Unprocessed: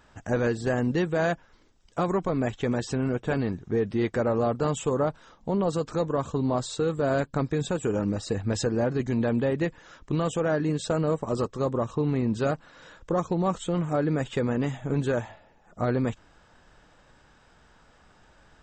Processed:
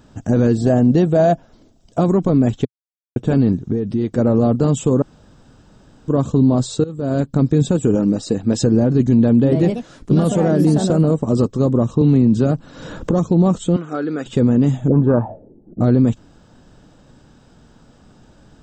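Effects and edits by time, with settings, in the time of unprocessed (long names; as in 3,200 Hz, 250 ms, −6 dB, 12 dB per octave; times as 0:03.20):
0:00.57–0:02.01: parametric band 670 Hz +11.5 dB 0.36 octaves
0:02.65–0:03.16: silence
0:03.72–0:04.18: downward compressor 2 to 1, threshold −35 dBFS
0:05.02–0:06.08: fill with room tone
0:06.84–0:07.43: fade in, from −18.5 dB
0:07.95–0:08.62: parametric band 76 Hz −14.5 dB 1.6 octaves
0:09.33–0:11.31: delay with pitch and tempo change per echo 114 ms, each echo +3 semitones, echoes 2, each echo −6 dB
0:12.01–0:13.24: multiband upward and downward compressor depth 100%
0:13.76–0:14.26: loudspeaker in its box 470–6,000 Hz, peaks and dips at 600 Hz −8 dB, 930 Hz −8 dB, 1,400 Hz +8 dB
0:14.88–0:15.81: envelope-controlled low-pass 310–1,100 Hz up, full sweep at −22.5 dBFS
whole clip: octave-band graphic EQ 125/250/1,000/2,000 Hz +6/+8/−4/−9 dB; brickwall limiter −13.5 dBFS; level +7.5 dB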